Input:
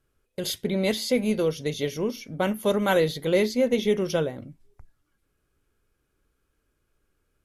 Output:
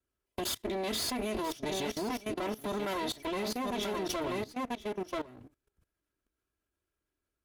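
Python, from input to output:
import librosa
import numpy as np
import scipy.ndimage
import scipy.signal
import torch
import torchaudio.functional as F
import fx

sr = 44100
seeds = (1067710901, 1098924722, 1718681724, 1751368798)

p1 = fx.lower_of_two(x, sr, delay_ms=3.0)
p2 = scipy.signal.sosfilt(scipy.signal.butter(2, 45.0, 'highpass', fs=sr, output='sos'), p1)
p3 = p2 + fx.echo_single(p2, sr, ms=985, db=-8.0, dry=0)
p4 = fx.level_steps(p3, sr, step_db=18)
y = F.gain(torch.from_numpy(p4), 2.5).numpy()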